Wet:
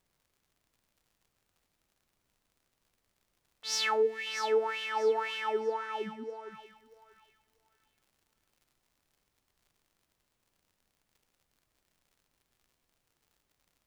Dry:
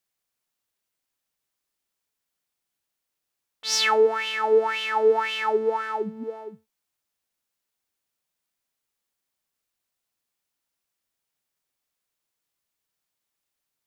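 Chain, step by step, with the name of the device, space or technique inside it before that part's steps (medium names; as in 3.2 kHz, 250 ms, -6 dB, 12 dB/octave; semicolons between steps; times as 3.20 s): 4.02–4.27 s: time-frequency box 510–1600 Hz -16 dB; vinyl LP (crackle 77 per s -48 dBFS; pink noise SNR 42 dB); 5.60–6.51 s: low-pass 8.8 kHz 12 dB/octave; thinning echo 639 ms, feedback 31%, high-pass 1.2 kHz, level -10 dB; trim -8.5 dB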